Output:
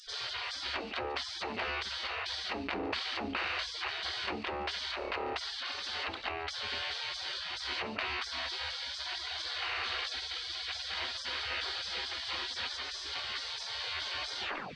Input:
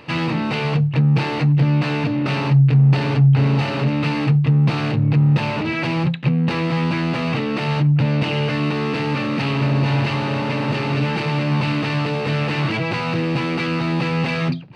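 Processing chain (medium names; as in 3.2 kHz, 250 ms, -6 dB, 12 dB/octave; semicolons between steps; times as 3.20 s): tape stop on the ending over 0.35 s; distance through air 110 m; feedback echo behind a high-pass 145 ms, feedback 38%, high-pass 5 kHz, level -15 dB; spectral gate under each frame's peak -30 dB weak; level flattener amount 50%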